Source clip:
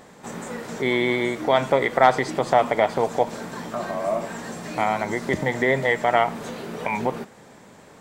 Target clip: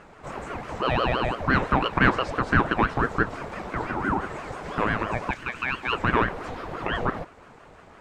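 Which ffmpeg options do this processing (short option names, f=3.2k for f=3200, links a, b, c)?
-filter_complex "[0:a]asettb=1/sr,asplit=3[a][b][c];[a]atrim=end=3.854[d];[b]atrim=start=3.85:end=4.5,asetpts=PTS-STARTPTS,afade=t=in:d=0.004:c=qsin,afade=t=out:st=0.646:d=0.004:c=qsin,afreqshift=-43[e];[c]atrim=start=4.496[f];[d][e]acrossfade=d=0.004:c1=hsin:c2=qsin[g];[g][f]acrossfade=d=0.004:c1=qsin:c2=hsin,asettb=1/sr,asplit=3[h][i][j];[h]atrim=end=5.314[k];[i]atrim=start=5.31:end=5.93,asetpts=PTS-STARTPTS,afade=t=in:d=0.004:c=qsin,afade=t=out:st=0.616:d=0.004:c=qsin,highpass=1k[l];[j]atrim=start=5.926[m];[k][l]acrossfade=d=0.004:c1=hsin:c2=qsin[n];[n][m]acrossfade=d=0.004:c1=qsin:c2=hsin,asplit=2[o][p];[p]asoftclip=type=hard:threshold=-18.5dB,volume=-5dB[q];[o][q]amix=inputs=2:normalize=0,aemphasis=mode=reproduction:type=75kf,aeval=exprs='val(0)*sin(2*PI*580*n/s+580*0.6/5.9*sin(2*PI*5.9*n/s))':c=same,volume=-1.5dB"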